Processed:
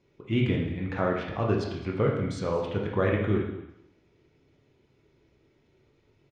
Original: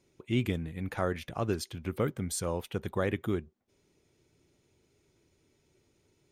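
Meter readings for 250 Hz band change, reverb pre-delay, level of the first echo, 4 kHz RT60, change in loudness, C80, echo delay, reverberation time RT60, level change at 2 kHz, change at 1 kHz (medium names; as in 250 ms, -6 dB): +5.0 dB, 17 ms, -18.0 dB, 0.85 s, +5.0 dB, 6.0 dB, 216 ms, 0.85 s, +5.0 dB, +5.0 dB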